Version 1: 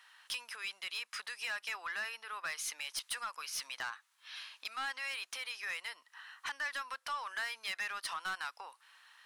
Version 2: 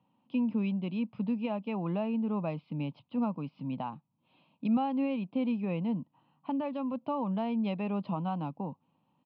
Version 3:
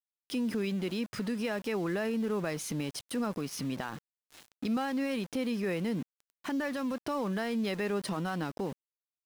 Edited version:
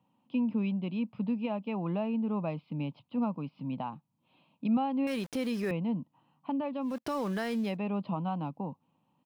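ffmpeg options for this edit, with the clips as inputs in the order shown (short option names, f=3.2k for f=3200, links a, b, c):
-filter_complex "[2:a]asplit=2[a][b];[1:a]asplit=3[c][d][e];[c]atrim=end=5.072[f];[a]atrim=start=5.068:end=5.712[g];[d]atrim=start=5.708:end=7.04[h];[b]atrim=start=6.8:end=7.78[i];[e]atrim=start=7.54[j];[f][g]acrossfade=d=0.004:c1=hsin:c2=hsin[k];[k][h]acrossfade=d=0.004:c1=hsin:c2=hsin[l];[l][i]acrossfade=d=0.24:c1=tri:c2=tri[m];[m][j]acrossfade=d=0.24:c1=tri:c2=tri"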